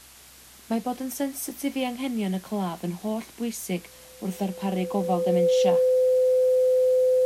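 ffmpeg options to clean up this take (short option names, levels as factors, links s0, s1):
-af "adeclick=t=4,bandreject=f=63.2:t=h:w=4,bandreject=f=126.4:t=h:w=4,bandreject=f=189.6:t=h:w=4,bandreject=f=252.8:t=h:w=4,bandreject=f=316:t=h:w=4,bandreject=f=510:w=30,afwtdn=0.004"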